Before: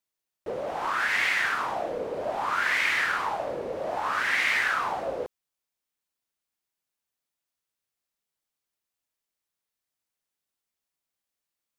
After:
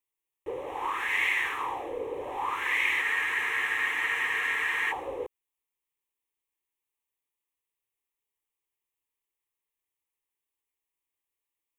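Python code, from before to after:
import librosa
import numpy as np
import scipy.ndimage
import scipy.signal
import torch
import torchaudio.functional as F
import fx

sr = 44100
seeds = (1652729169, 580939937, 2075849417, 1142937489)

y = fx.fixed_phaser(x, sr, hz=970.0, stages=8)
y = fx.spec_freeze(y, sr, seeds[0], at_s=3.05, hold_s=1.85)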